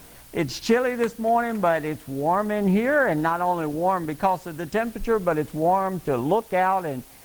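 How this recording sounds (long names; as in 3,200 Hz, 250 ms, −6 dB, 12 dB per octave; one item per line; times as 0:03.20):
a quantiser's noise floor 8 bits, dither triangular
Opus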